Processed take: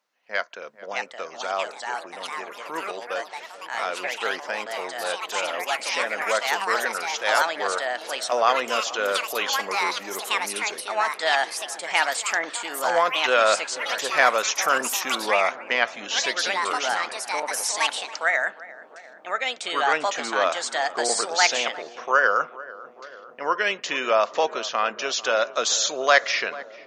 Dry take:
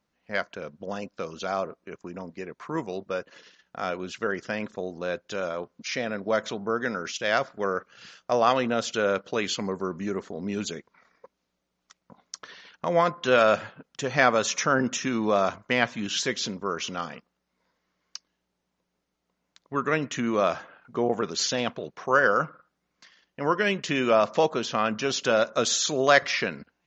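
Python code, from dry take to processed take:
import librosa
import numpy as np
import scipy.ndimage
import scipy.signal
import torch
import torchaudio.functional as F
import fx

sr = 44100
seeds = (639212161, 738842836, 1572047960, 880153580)

p1 = scipy.signal.sosfilt(scipy.signal.butter(2, 600.0, 'highpass', fs=sr, output='sos'), x)
p2 = p1 + fx.echo_filtered(p1, sr, ms=443, feedback_pct=80, hz=1400.0, wet_db=-17, dry=0)
p3 = fx.echo_pitch(p2, sr, ms=687, semitones=4, count=3, db_per_echo=-3.0)
y = p3 * librosa.db_to_amplitude(3.0)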